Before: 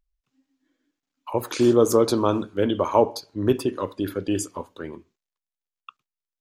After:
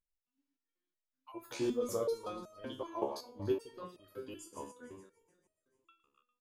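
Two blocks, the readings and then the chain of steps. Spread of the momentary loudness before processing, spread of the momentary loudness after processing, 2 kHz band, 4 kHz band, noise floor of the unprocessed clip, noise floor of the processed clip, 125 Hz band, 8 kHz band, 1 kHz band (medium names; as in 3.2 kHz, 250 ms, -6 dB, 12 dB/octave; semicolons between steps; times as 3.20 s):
15 LU, 16 LU, -15.5 dB, -15.5 dB, under -85 dBFS, under -85 dBFS, -19.0 dB, -16.5 dB, -17.5 dB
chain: backward echo that repeats 145 ms, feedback 66%, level -13 dB; delay 259 ms -24 dB; resonator arpeggio 5.3 Hz 70–630 Hz; trim -5.5 dB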